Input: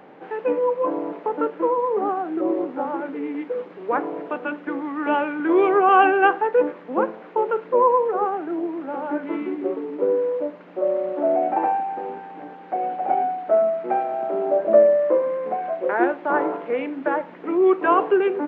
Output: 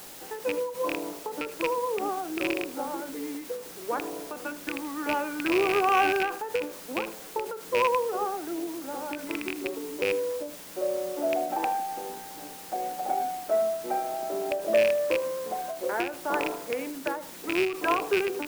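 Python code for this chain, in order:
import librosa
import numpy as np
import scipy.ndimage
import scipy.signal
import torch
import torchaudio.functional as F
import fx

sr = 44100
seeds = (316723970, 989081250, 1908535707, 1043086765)

p1 = fx.rattle_buzz(x, sr, strikes_db=-30.0, level_db=-8.0)
p2 = fx.cheby_harmonics(p1, sr, harmonics=(5,), levels_db=(-24,), full_scale_db=-1.5)
p3 = p2 + fx.echo_single(p2, sr, ms=78, db=-21.5, dry=0)
p4 = fx.quant_dither(p3, sr, seeds[0], bits=6, dither='triangular')
p5 = fx.end_taper(p4, sr, db_per_s=100.0)
y = p5 * librosa.db_to_amplitude(-9.0)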